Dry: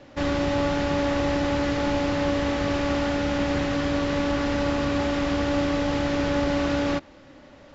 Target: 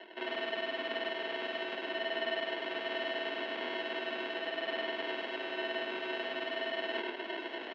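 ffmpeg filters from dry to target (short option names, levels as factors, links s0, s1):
-filter_complex "[0:a]lowshelf=f=390:g=9,areverse,acompressor=threshold=0.0158:ratio=10,areverse,asplit=2[s0][s1];[s1]adelay=758,volume=0.282,highshelf=f=4000:g=-17.1[s2];[s0][s2]amix=inputs=2:normalize=0,acrusher=samples=38:mix=1:aa=0.000001,crystalizer=i=9:c=0,asplit=2[s3][s4];[s4]aecho=0:1:100:0.668[s5];[s3][s5]amix=inputs=2:normalize=0,highpass=f=200:t=q:w=0.5412,highpass=f=200:t=q:w=1.307,lowpass=f=3100:t=q:w=0.5176,lowpass=f=3100:t=q:w=0.7071,lowpass=f=3100:t=q:w=1.932,afreqshift=81"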